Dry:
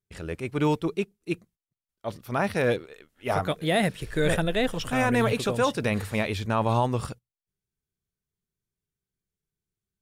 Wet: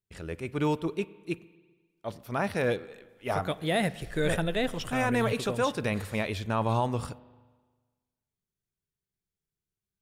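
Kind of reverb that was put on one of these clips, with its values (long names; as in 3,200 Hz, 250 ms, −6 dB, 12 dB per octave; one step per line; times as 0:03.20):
spring reverb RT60 1.4 s, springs 36/44 ms, chirp 25 ms, DRR 18 dB
level −3.5 dB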